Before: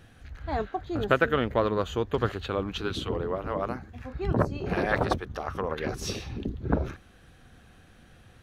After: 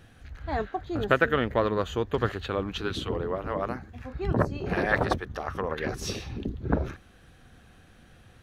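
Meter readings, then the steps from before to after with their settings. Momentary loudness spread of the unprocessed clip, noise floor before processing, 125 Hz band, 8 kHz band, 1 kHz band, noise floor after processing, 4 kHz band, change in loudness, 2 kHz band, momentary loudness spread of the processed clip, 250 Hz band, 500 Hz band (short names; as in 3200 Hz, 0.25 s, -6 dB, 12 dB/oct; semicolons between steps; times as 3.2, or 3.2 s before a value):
10 LU, -55 dBFS, 0.0 dB, 0.0 dB, 0.0 dB, -55 dBFS, 0.0 dB, +0.5 dB, +2.0 dB, 10 LU, 0.0 dB, 0.0 dB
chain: dynamic EQ 1800 Hz, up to +5 dB, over -50 dBFS, Q 5.2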